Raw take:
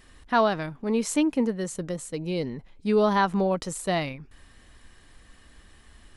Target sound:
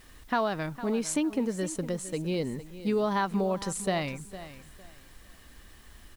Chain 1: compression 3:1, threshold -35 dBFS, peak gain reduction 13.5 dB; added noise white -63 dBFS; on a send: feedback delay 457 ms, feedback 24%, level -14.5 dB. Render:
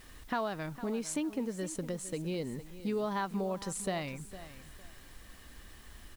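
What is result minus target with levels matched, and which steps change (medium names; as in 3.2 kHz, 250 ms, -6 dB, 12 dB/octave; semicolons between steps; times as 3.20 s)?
compression: peak gain reduction +6.5 dB
change: compression 3:1, threshold -25.5 dBFS, peak gain reduction 7.5 dB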